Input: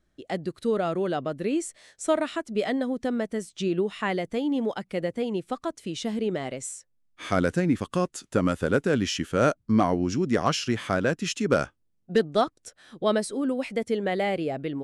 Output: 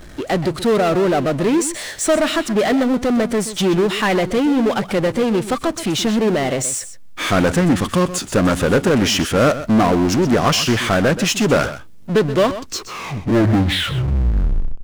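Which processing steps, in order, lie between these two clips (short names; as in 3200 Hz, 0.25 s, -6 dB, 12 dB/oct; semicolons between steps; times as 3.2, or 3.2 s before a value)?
tape stop at the end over 2.74 s; power-law curve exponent 0.5; echo 0.127 s -13 dB; Doppler distortion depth 0.24 ms; gain +3.5 dB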